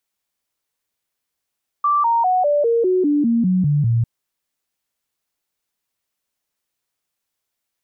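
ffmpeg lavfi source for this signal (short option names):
-f lavfi -i "aevalsrc='0.211*clip(min(mod(t,0.2),0.2-mod(t,0.2))/0.005,0,1)*sin(2*PI*1170*pow(2,-floor(t/0.2)/3)*mod(t,0.2))':d=2.2:s=44100"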